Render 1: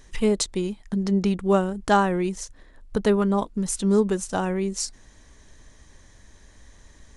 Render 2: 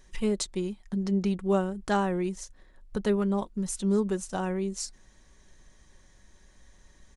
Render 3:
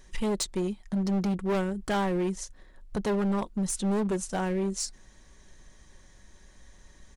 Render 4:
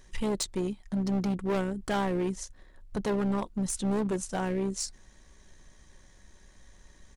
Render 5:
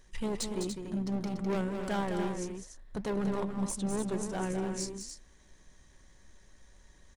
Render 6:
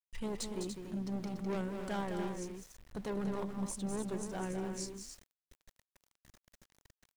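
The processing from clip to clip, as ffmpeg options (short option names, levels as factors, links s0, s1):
-af "aecho=1:1:5.4:0.35,volume=0.447"
-af "volume=22.4,asoftclip=hard,volume=0.0447,volume=1.41"
-af "tremolo=f=66:d=0.333"
-filter_complex "[0:a]flanger=delay=1.7:depth=9.4:regen=89:speed=1.6:shape=triangular,asplit=2[s0][s1];[s1]aecho=0:1:204.1|288.6:0.447|0.398[s2];[s0][s2]amix=inputs=2:normalize=0"
-af "aeval=exprs='val(0)*gte(abs(val(0)),0.00355)':c=same,volume=0.562"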